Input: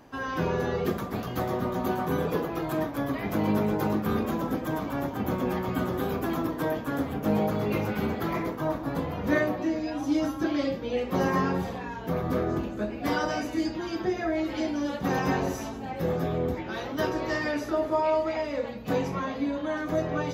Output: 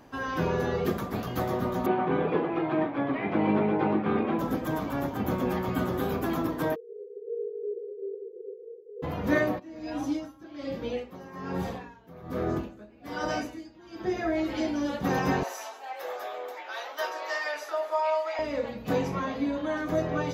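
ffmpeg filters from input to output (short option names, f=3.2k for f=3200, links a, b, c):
-filter_complex "[0:a]asettb=1/sr,asplit=3[a][b][c];[a]atrim=end=1.864[d];[b]atrim=start=1.86:end=4.39,asetpts=PTS-STARTPTS,afade=t=in:d=0.004:c=qsin,afade=t=out:st=2.526:d=0.004:c=qsin,highpass=140,equalizer=f=350:t=q:w=4:g=5,equalizer=f=790:t=q:w=4:g=4,equalizer=f=2.3k:t=q:w=4:g=5,lowpass=f=3.2k:w=0.5412,lowpass=f=3.2k:w=1.3066[e];[c]atrim=start=4.386[f];[d][e]acrossfade=d=0.004:c1=hsin:c2=qsin[g];[g][f]acrossfade=d=0.004:c1=qsin:c2=hsin,asplit=3[h][i][j];[h]afade=t=out:st=6.74:d=0.02[k];[i]asuperpass=centerf=430:order=12:qfactor=3.7,afade=t=in:st=6.74:d=0.02,afade=t=out:st=9.02:d=0.02[l];[j]afade=t=in:st=9.02:d=0.02[m];[k][l][m]amix=inputs=3:normalize=0,asplit=3[n][o][p];[n]afade=t=out:st=9.58:d=0.02[q];[o]aeval=exprs='val(0)*pow(10,-20*(0.5-0.5*cos(2*PI*1.2*n/s))/20)':c=same,afade=t=in:st=9.58:d=0.02,afade=t=out:st=14.23:d=0.02[r];[p]afade=t=in:st=14.23:d=0.02[s];[q][r][s]amix=inputs=3:normalize=0,asettb=1/sr,asplit=3[t][u][v];[t]atrim=end=15.434[w];[u]atrim=start=15.43:end=18.39,asetpts=PTS-STARTPTS,afade=t=in:d=0.004:c=qsin,afade=t=out:st=2.956:d=0.004:c=qsin,highpass=f=610:w=0.5412,highpass=f=610:w=1.3066[x];[v]atrim=start=18.386[y];[w][x]acrossfade=d=0.004:c1=hsin:c2=qsin[z];[z][y]acrossfade=d=0.004:c1=qsin:c2=hsin"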